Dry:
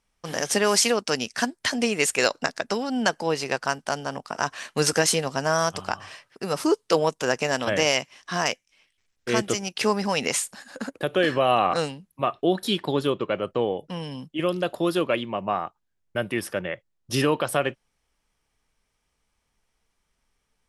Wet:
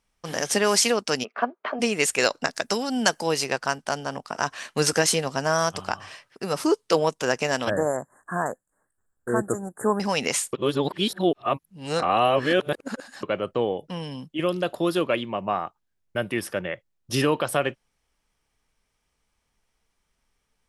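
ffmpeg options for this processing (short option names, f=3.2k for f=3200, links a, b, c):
-filter_complex "[0:a]asplit=3[a][b][c];[a]afade=t=out:st=1.23:d=0.02[d];[b]highpass=f=250:w=0.5412,highpass=f=250:w=1.3066,equalizer=f=290:t=q:w=4:g=-8,equalizer=f=420:t=q:w=4:g=5,equalizer=f=640:t=q:w=4:g=7,equalizer=f=1.2k:t=q:w=4:g=9,equalizer=f=1.8k:t=q:w=4:g=-10,lowpass=f=2.2k:w=0.5412,lowpass=f=2.2k:w=1.3066,afade=t=in:st=1.23:d=0.02,afade=t=out:st=1.79:d=0.02[e];[c]afade=t=in:st=1.79:d=0.02[f];[d][e][f]amix=inputs=3:normalize=0,asettb=1/sr,asplit=3[g][h][i];[g]atrim=end=2.534[j];[h]atrim=start=2.53:end=3.46,asetpts=PTS-STARTPTS,afade=t=in:d=0.004:c=qsin,afade=t=out:st=0.926:d=0.004:c=qsin,highshelf=f=5.5k:g=12[k];[i]atrim=start=3.456[l];[j][k]acrossfade=d=0.004:c1=hsin:c2=qsin[m];[m][l]acrossfade=d=0.004:c1=qsin:c2=hsin,asettb=1/sr,asplit=3[n][o][p];[n]atrim=end=7.704[q];[o]atrim=start=7.7:end=10,asetpts=PTS-STARTPTS,afade=t=in:d=0.004:c=qsin,afade=t=out:st=2.296:d=0.004:c=qsin,asuperstop=centerf=3600:order=20:qfactor=0.66[r];[p]atrim=start=9.996[s];[q][r]acrossfade=d=0.004:c1=hsin:c2=qsin[t];[t][s]acrossfade=d=0.004:c1=qsin:c2=hsin,asplit=3[u][v][w];[u]atrim=end=10.532[x];[v]atrim=start=10.528:end=13.232,asetpts=PTS-STARTPTS,areverse[y];[w]atrim=start=13.228[z];[x][y]acrossfade=d=0.004:c1=hsin:c2=hsin[aa];[aa][z]acrossfade=d=0.004:c1=hsin:c2=hsin"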